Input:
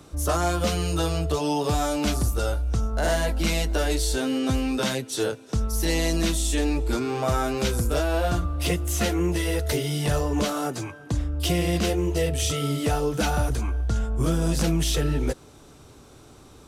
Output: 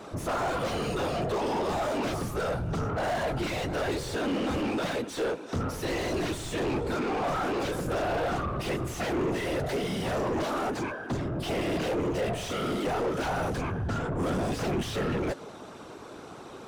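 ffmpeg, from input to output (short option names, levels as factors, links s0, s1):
-filter_complex "[0:a]afftfilt=real='hypot(re,im)*cos(2*PI*random(0))':imag='hypot(re,im)*sin(2*PI*random(1))':win_size=512:overlap=0.75,asplit=2[s0][s1];[s1]highpass=f=720:p=1,volume=31.6,asoftclip=type=tanh:threshold=0.158[s2];[s0][s2]amix=inputs=2:normalize=0,lowpass=f=1100:p=1,volume=0.501,volume=0.631"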